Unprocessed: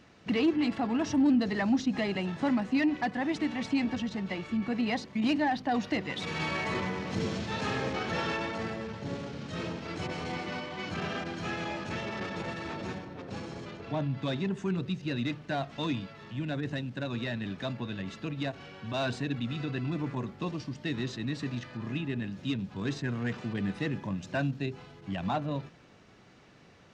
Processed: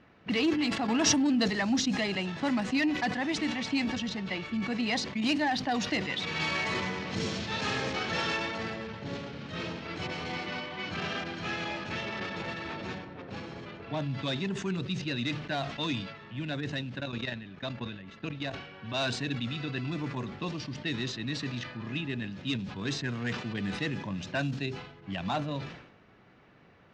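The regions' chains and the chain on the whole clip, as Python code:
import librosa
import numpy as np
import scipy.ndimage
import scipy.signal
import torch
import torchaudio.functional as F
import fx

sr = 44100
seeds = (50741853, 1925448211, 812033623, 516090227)

y = fx.chain(x, sr, fx.low_shelf(hz=97.0, db=-10.0),
    fx.env_flatten(amount_pct=70), at=(0.88, 1.48))
y = fx.chain(y, sr, fx.peak_eq(hz=6300.0, db=3.5, octaves=0.22),
    fx.transient(attack_db=6, sustain_db=-5),
    fx.level_steps(step_db=11), at=(17.0, 18.54))
y = fx.env_lowpass(y, sr, base_hz=1700.0, full_db=-24.0)
y = fx.high_shelf(y, sr, hz=2200.0, db=10.5)
y = fx.sustainer(y, sr, db_per_s=73.0)
y = y * librosa.db_to_amplitude(-2.0)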